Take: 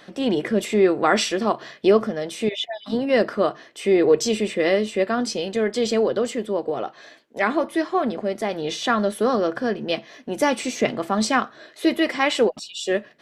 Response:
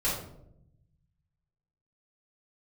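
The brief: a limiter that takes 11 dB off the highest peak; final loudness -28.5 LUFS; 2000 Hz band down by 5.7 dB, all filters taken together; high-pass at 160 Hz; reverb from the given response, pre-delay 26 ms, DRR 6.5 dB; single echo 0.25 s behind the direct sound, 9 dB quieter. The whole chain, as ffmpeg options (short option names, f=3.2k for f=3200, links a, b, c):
-filter_complex "[0:a]highpass=160,equalizer=f=2k:t=o:g=-7,alimiter=limit=-17dB:level=0:latency=1,aecho=1:1:250:0.355,asplit=2[a][b];[1:a]atrim=start_sample=2205,adelay=26[c];[b][c]afir=irnorm=-1:irlink=0,volume=-15.5dB[d];[a][d]amix=inputs=2:normalize=0,volume=-2.5dB"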